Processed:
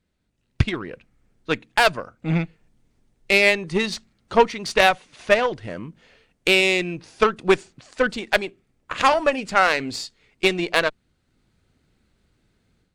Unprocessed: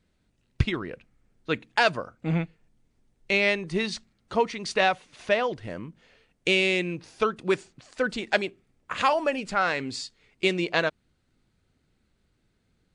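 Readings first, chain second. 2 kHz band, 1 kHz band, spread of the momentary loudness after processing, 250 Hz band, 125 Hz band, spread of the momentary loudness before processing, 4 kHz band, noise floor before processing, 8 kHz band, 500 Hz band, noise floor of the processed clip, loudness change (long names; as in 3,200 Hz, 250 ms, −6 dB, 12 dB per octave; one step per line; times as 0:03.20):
+6.0 dB, +6.0 dB, 17 LU, +4.0 dB, +3.5 dB, 14 LU, +5.5 dB, −71 dBFS, +7.0 dB, +5.5 dB, −70 dBFS, +5.5 dB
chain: automatic gain control gain up to 9 dB
harmonic generator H 6 −23 dB, 7 −26 dB, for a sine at −1 dBFS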